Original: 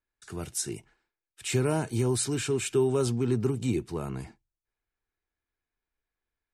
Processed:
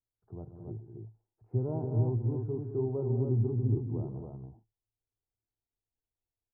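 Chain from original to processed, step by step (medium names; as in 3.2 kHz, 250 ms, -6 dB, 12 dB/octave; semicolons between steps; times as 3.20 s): steep low-pass 870 Hz 36 dB/octave; peaking EQ 110 Hz +14.5 dB 0.3 oct; on a send: multi-tap echo 133/203/278 ms -13/-10.5/-4 dB; on the sum: trim -8.5 dB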